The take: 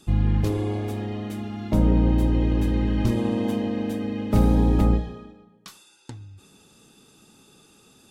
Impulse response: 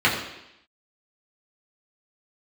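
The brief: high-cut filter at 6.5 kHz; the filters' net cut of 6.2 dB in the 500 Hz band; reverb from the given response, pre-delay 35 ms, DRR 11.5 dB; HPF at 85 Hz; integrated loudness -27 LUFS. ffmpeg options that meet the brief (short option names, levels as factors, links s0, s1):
-filter_complex "[0:a]highpass=85,lowpass=6500,equalizer=f=500:t=o:g=-8,asplit=2[s0][s1];[1:a]atrim=start_sample=2205,adelay=35[s2];[s1][s2]afir=irnorm=-1:irlink=0,volume=0.0282[s3];[s0][s3]amix=inputs=2:normalize=0,volume=0.944"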